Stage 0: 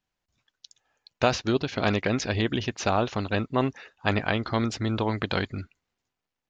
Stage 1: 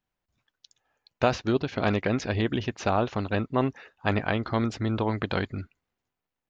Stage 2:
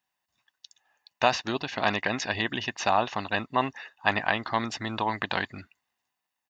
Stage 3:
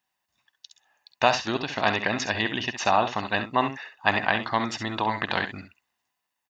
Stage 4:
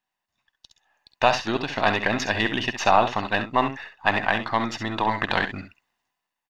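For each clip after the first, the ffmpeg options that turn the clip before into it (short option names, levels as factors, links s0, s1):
-af "equalizer=f=6300:t=o:w=2.3:g=-7"
-af "highpass=f=900:p=1,aecho=1:1:1.1:0.49,volume=1.78"
-af "aecho=1:1:51|66:0.126|0.316,volume=1.26"
-af "aeval=exprs='if(lt(val(0),0),0.708*val(0),val(0))':c=same,highshelf=f=5400:g=-7,dynaudnorm=f=280:g=7:m=3.76,volume=0.891"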